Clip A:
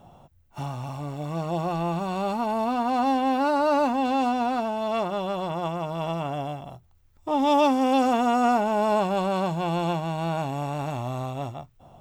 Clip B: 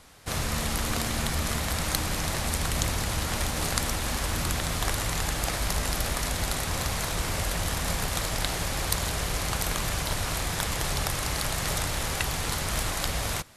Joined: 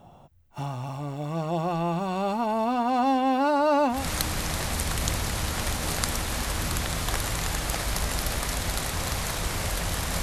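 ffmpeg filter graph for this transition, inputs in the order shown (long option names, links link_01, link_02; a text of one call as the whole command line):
ffmpeg -i cue0.wav -i cue1.wav -filter_complex "[0:a]apad=whole_dur=10.22,atrim=end=10.22,atrim=end=4.08,asetpts=PTS-STARTPTS[link_01];[1:a]atrim=start=1.62:end=7.96,asetpts=PTS-STARTPTS[link_02];[link_01][link_02]acrossfade=duration=0.2:curve1=tri:curve2=tri" out.wav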